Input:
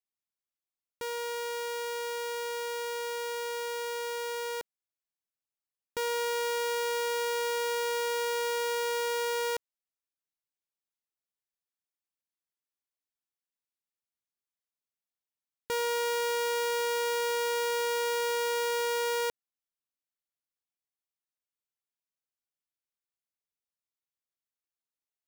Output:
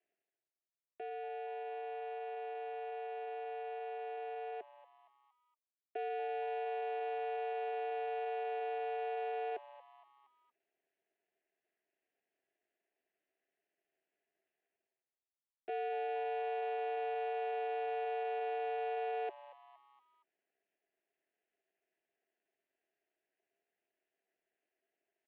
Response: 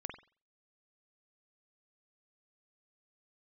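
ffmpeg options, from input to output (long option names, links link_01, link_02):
-filter_complex "[0:a]areverse,acompressor=mode=upward:threshold=-49dB:ratio=2.5,areverse,highpass=frequency=190:width_type=q:width=0.5412,highpass=frequency=190:width_type=q:width=1.307,lowpass=frequency=3400:width_type=q:width=0.5176,lowpass=frequency=3400:width_type=q:width=0.7071,lowpass=frequency=3400:width_type=q:width=1.932,afreqshift=82,adynamicsmooth=sensitivity=2:basefreq=2400,asetrate=46722,aresample=44100,atempo=0.943874,asplit=3[link_01][link_02][link_03];[link_01]bandpass=frequency=530:width_type=q:width=8,volume=0dB[link_04];[link_02]bandpass=frequency=1840:width_type=q:width=8,volume=-6dB[link_05];[link_03]bandpass=frequency=2480:width_type=q:width=8,volume=-9dB[link_06];[link_04][link_05][link_06]amix=inputs=3:normalize=0,asplit=2[link_07][link_08];[link_08]asplit=4[link_09][link_10][link_11][link_12];[link_09]adelay=233,afreqshift=130,volume=-17.5dB[link_13];[link_10]adelay=466,afreqshift=260,volume=-23.9dB[link_14];[link_11]adelay=699,afreqshift=390,volume=-30.3dB[link_15];[link_12]adelay=932,afreqshift=520,volume=-36.6dB[link_16];[link_13][link_14][link_15][link_16]amix=inputs=4:normalize=0[link_17];[link_07][link_17]amix=inputs=2:normalize=0,aeval=exprs='val(0)*sin(2*PI*140*n/s)':channel_layout=same,volume=4dB"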